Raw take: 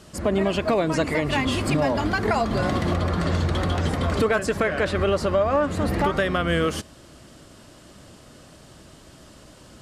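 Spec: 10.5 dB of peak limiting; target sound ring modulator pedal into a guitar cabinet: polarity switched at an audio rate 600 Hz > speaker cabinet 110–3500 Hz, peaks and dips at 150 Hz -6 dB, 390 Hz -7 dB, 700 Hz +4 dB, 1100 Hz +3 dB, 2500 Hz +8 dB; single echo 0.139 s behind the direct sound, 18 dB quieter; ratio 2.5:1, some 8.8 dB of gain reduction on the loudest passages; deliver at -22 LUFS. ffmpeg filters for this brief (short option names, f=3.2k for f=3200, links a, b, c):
-af "acompressor=threshold=-31dB:ratio=2.5,alimiter=level_in=5dB:limit=-24dB:level=0:latency=1,volume=-5dB,aecho=1:1:139:0.126,aeval=exprs='val(0)*sgn(sin(2*PI*600*n/s))':c=same,highpass=110,equalizer=f=150:t=q:w=4:g=-6,equalizer=f=390:t=q:w=4:g=-7,equalizer=f=700:t=q:w=4:g=4,equalizer=f=1.1k:t=q:w=4:g=3,equalizer=f=2.5k:t=q:w=4:g=8,lowpass=f=3.5k:w=0.5412,lowpass=f=3.5k:w=1.3066,volume=13.5dB"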